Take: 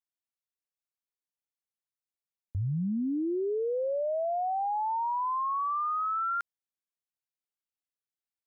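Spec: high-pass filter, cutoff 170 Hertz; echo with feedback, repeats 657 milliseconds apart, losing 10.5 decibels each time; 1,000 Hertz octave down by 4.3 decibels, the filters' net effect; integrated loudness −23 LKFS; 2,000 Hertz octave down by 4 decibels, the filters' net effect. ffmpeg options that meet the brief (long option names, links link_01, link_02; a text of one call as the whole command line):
ffmpeg -i in.wav -af "highpass=170,equalizer=frequency=1000:width_type=o:gain=-4.5,equalizer=frequency=2000:width_type=o:gain=-3.5,aecho=1:1:657|1314|1971:0.299|0.0896|0.0269,volume=10.5dB" out.wav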